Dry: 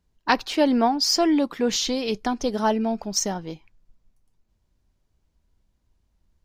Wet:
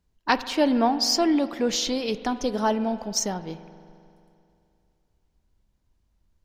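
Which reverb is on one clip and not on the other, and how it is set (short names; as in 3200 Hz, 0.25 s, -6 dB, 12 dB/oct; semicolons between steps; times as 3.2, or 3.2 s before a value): spring tank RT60 2.6 s, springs 43 ms, chirp 35 ms, DRR 13 dB; gain -1.5 dB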